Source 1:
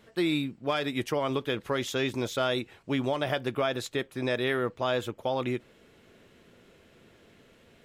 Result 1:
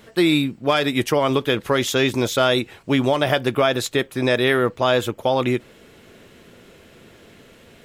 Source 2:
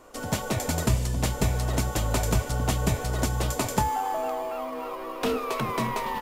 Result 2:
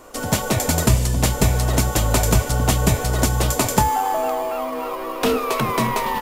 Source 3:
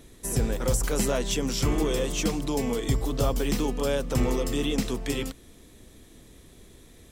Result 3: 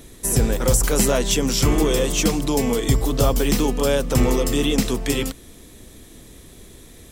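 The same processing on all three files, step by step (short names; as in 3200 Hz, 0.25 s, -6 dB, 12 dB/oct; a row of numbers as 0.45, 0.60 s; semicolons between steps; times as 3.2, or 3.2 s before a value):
high shelf 7500 Hz +5 dB; match loudness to -20 LUFS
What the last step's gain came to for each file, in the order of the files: +10.0, +7.0, +7.0 dB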